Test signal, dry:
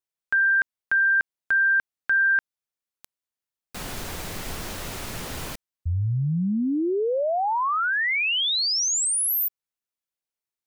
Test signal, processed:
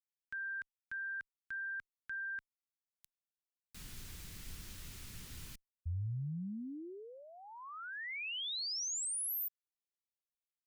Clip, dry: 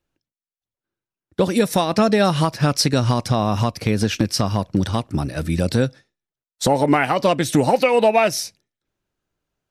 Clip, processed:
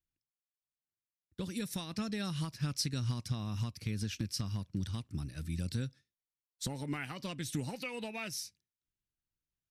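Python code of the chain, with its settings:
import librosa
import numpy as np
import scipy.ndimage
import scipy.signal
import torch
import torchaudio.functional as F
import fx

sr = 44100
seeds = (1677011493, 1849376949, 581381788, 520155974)

y = fx.tone_stack(x, sr, knobs='6-0-2')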